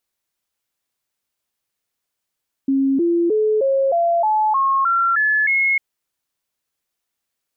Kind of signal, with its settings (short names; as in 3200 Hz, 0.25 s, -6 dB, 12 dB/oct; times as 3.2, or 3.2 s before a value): stepped sine 271 Hz up, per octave 3, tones 10, 0.31 s, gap 0.00 s -14 dBFS